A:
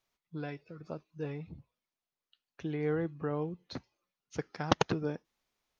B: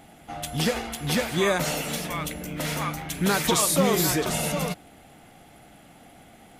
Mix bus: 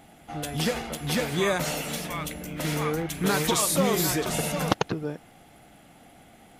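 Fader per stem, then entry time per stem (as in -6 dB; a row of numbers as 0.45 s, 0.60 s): +2.5 dB, -2.0 dB; 0.00 s, 0.00 s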